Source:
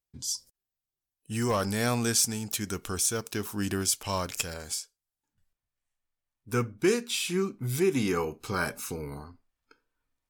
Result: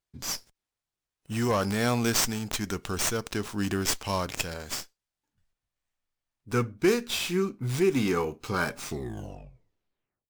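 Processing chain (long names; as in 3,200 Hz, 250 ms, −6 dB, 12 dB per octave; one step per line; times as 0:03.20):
turntable brake at the end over 1.53 s
windowed peak hold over 3 samples
level +1.5 dB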